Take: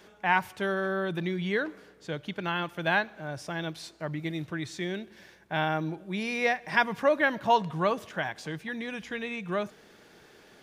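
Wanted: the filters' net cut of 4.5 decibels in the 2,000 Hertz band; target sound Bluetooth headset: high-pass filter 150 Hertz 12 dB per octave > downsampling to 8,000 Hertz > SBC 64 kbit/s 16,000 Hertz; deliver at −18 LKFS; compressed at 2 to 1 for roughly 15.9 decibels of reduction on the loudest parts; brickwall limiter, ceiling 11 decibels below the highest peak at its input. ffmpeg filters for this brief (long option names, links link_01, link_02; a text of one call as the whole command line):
ffmpeg -i in.wav -af "equalizer=frequency=2000:width_type=o:gain=-6,acompressor=threshold=-49dB:ratio=2,alimiter=level_in=11dB:limit=-24dB:level=0:latency=1,volume=-11dB,highpass=150,aresample=8000,aresample=44100,volume=28.5dB" -ar 16000 -c:a sbc -b:a 64k out.sbc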